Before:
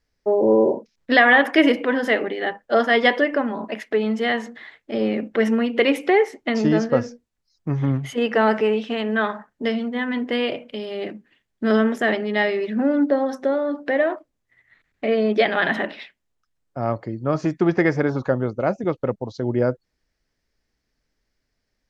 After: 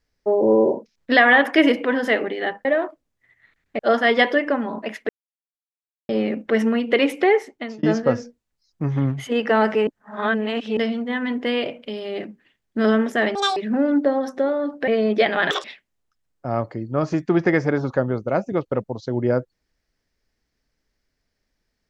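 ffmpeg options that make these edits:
-filter_complex "[0:a]asplit=13[a][b][c][d][e][f][g][h][i][j][k][l][m];[a]atrim=end=2.652[n];[b]atrim=start=13.928:end=15.072[o];[c]atrim=start=2.648:end=3.95,asetpts=PTS-STARTPTS,afade=t=out:st=1.298:d=0.004:c=hsin[p];[d]atrim=start=3.95:end=4.95,asetpts=PTS-STARTPTS,volume=0[q];[e]atrim=start=4.95:end=6.69,asetpts=PTS-STARTPTS,afade=t=in:d=0.004:c=hsin,afade=t=out:st=1.28:d=0.46[r];[f]atrim=start=6.69:end=8.732,asetpts=PTS-STARTPTS,afade=t=in:d=0.004:c=hsin[s];[g]atrim=start=8.728:end=9.632,asetpts=PTS-STARTPTS,areverse[t];[h]atrim=start=9.628:end=12.214[u];[i]atrim=start=12.21:end=12.62,asetpts=PTS-STARTPTS,asetrate=84231,aresample=44100,atrim=end_sample=9466,asetpts=PTS-STARTPTS[v];[j]atrim=start=12.616:end=13.932[w];[k]atrim=start=15.068:end=15.704[x];[l]atrim=start=15.7:end=15.96,asetpts=PTS-STARTPTS,asetrate=83349,aresample=44100[y];[m]atrim=start=15.956[z];[n][o]acrossfade=d=0.004:c1=hsin:c2=hsin[aa];[p][q][r][s]concat=n=4:v=0:a=1[ab];[aa][ab]acrossfade=d=0.004:c1=hsin:c2=hsin[ac];[ac][t]acrossfade=d=0.004:c1=hsin:c2=hsin[ad];[ad][u]acrossfade=d=0.004:c1=hsin:c2=hsin[ae];[ae][v]acrossfade=d=0.004:c1=hsin:c2=hsin[af];[af][w]acrossfade=d=0.004:c1=hsin:c2=hsin[ag];[ag][x]acrossfade=d=0.004:c1=hsin:c2=hsin[ah];[ah][y]acrossfade=d=0.004:c1=hsin:c2=hsin[ai];[ai][z]acrossfade=d=0.004:c1=hsin:c2=hsin"

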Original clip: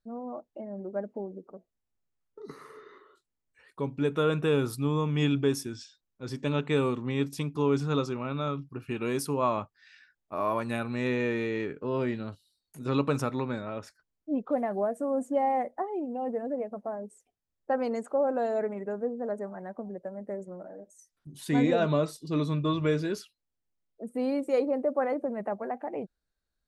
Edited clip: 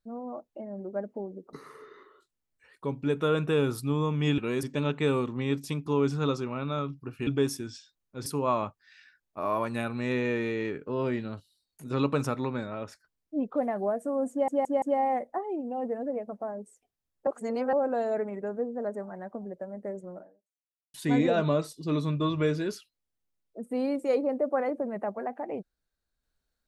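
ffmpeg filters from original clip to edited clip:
-filter_complex "[0:a]asplit=12[a][b][c][d][e][f][g][h][i][j][k][l];[a]atrim=end=1.532[m];[b]atrim=start=2.478:end=5.332[n];[c]atrim=start=8.958:end=9.212[o];[d]atrim=start=6.318:end=8.962[p];[e]atrim=start=5.328:end=6.322[q];[f]atrim=start=9.208:end=15.432[r];[g]atrim=start=15.258:end=15.432[s];[h]atrim=start=15.258:end=15.432[t];[i]atrim=start=15.258:end=17.712[u];[j]atrim=start=17.708:end=18.172,asetpts=PTS-STARTPTS,areverse[v];[k]atrim=start=18.168:end=21.38,asetpts=PTS-STARTPTS,afade=t=out:st=2.462:d=0.75:c=exp[w];[l]atrim=start=21.38,asetpts=PTS-STARTPTS,afade=t=in:d=0.004:c=hsin[x];[m][n]acrossfade=d=0.004:c1=hsin:c2=hsin[y];[y][o]acrossfade=d=0.004:c1=hsin:c2=hsin[z];[z][p]acrossfade=d=0.004:c1=hsin:c2=hsin[aa];[aa][q]acrossfade=d=0.004:c1=hsin:c2=hsin[ab];[ab][r]acrossfade=d=0.004:c1=hsin:c2=hsin[ac];[ac][s]acrossfade=d=0.004:c1=hsin:c2=hsin[ad];[ad][t]acrossfade=d=0.004:c1=hsin:c2=hsin[ae];[ae][u]acrossfade=d=0.004:c1=hsin:c2=hsin[af];[af][v]acrossfade=d=0.004:c1=hsin:c2=hsin[ag];[w][x]concat=n=2:v=0:a=1[ah];[ag][ah]acrossfade=d=0.004:c1=hsin:c2=hsin"

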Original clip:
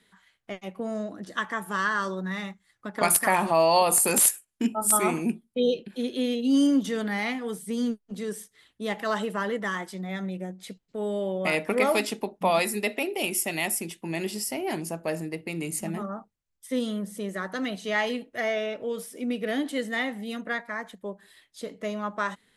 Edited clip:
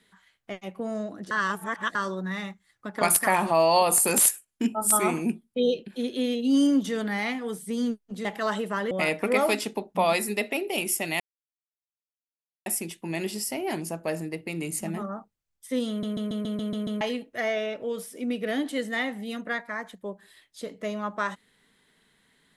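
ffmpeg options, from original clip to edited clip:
-filter_complex "[0:a]asplit=14[a][b][c][d][e][f][g][h][i][j][k][l][m][n];[a]atrim=end=1.312[o];[b]atrim=start=1.308:end=1.952,asetpts=PTS-STARTPTS,areverse[p];[c]atrim=start=1.948:end=8.252[q];[d]atrim=start=8.888:end=9.552[r];[e]atrim=start=11.368:end=13.66,asetpts=PTS-STARTPTS,afade=t=out:st=2.288:d=0.004:c=hsin,apad=pad_dur=1.46[s];[f]atrim=start=13.66:end=17.032,asetpts=PTS-STARTPTS,afade=t=in:d=0.004:c=hsin[t];[g]atrim=start=16.888:end=17.032[u];[h]atrim=start=16.888:end=17.032[v];[i]atrim=start=16.888:end=17.032[w];[j]atrim=start=16.888:end=17.032[x];[k]atrim=start=16.888:end=17.032[y];[l]atrim=start=16.888:end=17.032[z];[m]atrim=start=16.888:end=17.032[aa];[n]atrim=start=18.008[ab];[o][p]acrossfade=d=0.004:c1=hsin:c2=hsin[ac];[ac][q]acrossfade=d=0.004:c1=hsin:c2=hsin[ad];[ad][r]acrossfade=d=0.004:c1=hsin:c2=hsin[ae];[s][t]concat=n=2:v=0:a=1[af];[ae][af]acrossfade=d=0.004:c1=hsin:c2=hsin[ag];[ag][u]acrossfade=d=0.004:c1=hsin:c2=hsin[ah];[ah][v]acrossfade=d=0.004:c1=hsin:c2=hsin[ai];[ai][w]acrossfade=d=0.004:c1=hsin:c2=hsin[aj];[aj][x]acrossfade=d=0.004:c1=hsin:c2=hsin[ak];[ak][y]acrossfade=d=0.004:c1=hsin:c2=hsin[al];[al][z]acrossfade=d=0.004:c1=hsin:c2=hsin[am];[am][aa]acrossfade=d=0.004:c1=hsin:c2=hsin[an];[an][ab]acrossfade=d=0.004:c1=hsin:c2=hsin"

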